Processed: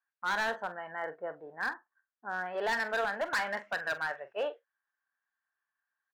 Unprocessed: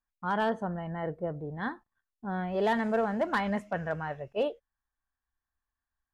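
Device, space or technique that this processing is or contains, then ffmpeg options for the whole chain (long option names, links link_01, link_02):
megaphone: -filter_complex "[0:a]asettb=1/sr,asplit=3[link_01][link_02][link_03];[link_01]atrim=end=1.524[link_04];[link_02]atrim=start=1.52:end=2.46,asetpts=PTS-STARTPTS,afade=type=in:duration=0.004:curve=qsin,afade=type=out:start_time=0.936:duration=0.004:curve=qsin,lowpass=1700[link_05];[link_03]atrim=start=2.456[link_06];[link_04][link_05]acrossfade=duration=0.004:curve1=hsin:curve2=qsin[link_07];[link_07][link_06]acrossfade=duration=0.004:curve1=qsin:curve2=hsin,highpass=620,lowpass=3100,equalizer=frequency=1600:width_type=o:width=0.51:gain=10.5,asoftclip=type=hard:threshold=-26.5dB,asplit=2[link_08][link_09];[link_09]adelay=44,volume=-13.5dB[link_10];[link_08][link_10]amix=inputs=2:normalize=0"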